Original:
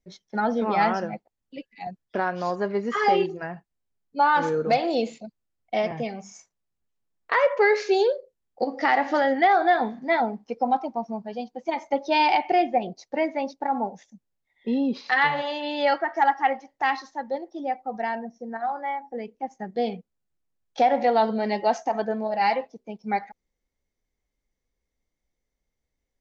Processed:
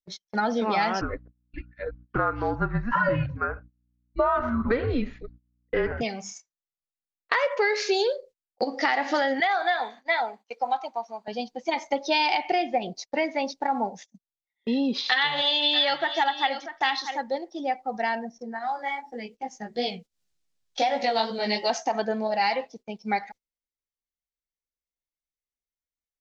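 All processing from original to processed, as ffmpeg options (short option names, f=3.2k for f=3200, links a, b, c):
-filter_complex "[0:a]asettb=1/sr,asplit=3[a][b][c];[a]atrim=end=1.014[d];[b]atrim=start=1.01:end=6.01,asetpts=PTS-STARTPTS,afade=t=in:d=0.004:c=qsin,afade=t=out:st=4.996:d=0.004:c=qsin,afreqshift=-240,lowpass=f=1.4k:t=q:w=2.5,aeval=exprs='val(0)+0.00355*(sin(2*PI*60*n/s)+sin(2*PI*2*60*n/s)/2+sin(2*PI*3*60*n/s)/3+sin(2*PI*4*60*n/s)/4+sin(2*PI*5*60*n/s)/5)':c=same[e];[c]atrim=start=6.006[f];[d][e]acrossfade=d=0.004:c1=hsin:c2=qsin[g];[g][f]acrossfade=d=0.004:c1=qsin:c2=hsin,asettb=1/sr,asplit=3[h][i][j];[h]atrim=end=9.404[k];[i]atrim=start=9.4:end=11.28,asetpts=PTS-STARTPTS,afade=t=in:d=0.004:c=qsin,afade=t=out:st=1.876:d=0.004:c=qsin,highpass=680,bandreject=f=5.3k:w=5.4[l];[j]atrim=start=11.276[m];[k][l]acrossfade=d=0.004:c1=hsin:c2=qsin[n];[n][m]acrossfade=d=0.004:c1=qsin:c2=hsin,asettb=1/sr,asplit=3[o][p][q];[o]atrim=end=14.984[r];[p]atrim=start=14.98:end=17.18,asetpts=PTS-STARTPTS,afade=t=in:d=0.004:c=qsin,afade=t=out:st=2.196:d=0.004:c=qsin,equalizer=f=3.5k:w=4:g=13.5,aecho=1:1:639:0.211,atrim=end_sample=97020[s];[q]atrim=start=17.176[t];[r][s]acrossfade=d=0.004:c1=hsin:c2=qsin[u];[u][t]acrossfade=d=0.004:c1=qsin:c2=hsin,asettb=1/sr,asplit=3[v][w][x];[v]atrim=end=18.384[y];[w]atrim=start=18.38:end=21.7,asetpts=PTS-STARTPTS,afade=t=in:d=0.004:c=qsin,afade=t=out:st=3.316:d=0.004:c=qsin,acompressor=mode=upward:threshold=-34dB:ratio=2.5:attack=3.2:release=140:knee=2.83:detection=peak,flanger=delay=15.5:depth=3.3:speed=2.7,adynamicequalizer=threshold=0.00794:dfrequency=2400:dqfactor=0.7:tfrequency=2400:tqfactor=0.7:attack=5:release=100:ratio=0.375:range=3.5:mode=boostabove:tftype=highshelf[z];[x]atrim=start=21.696[aa];[y][z]acrossfade=d=0.004:c1=hsin:c2=qsin[ab];[ab][aa]acrossfade=d=0.004:c1=qsin:c2=hsin,agate=range=-22dB:threshold=-45dB:ratio=16:detection=peak,equalizer=f=4.8k:t=o:w=2.4:g=10,acompressor=threshold=-20dB:ratio=6"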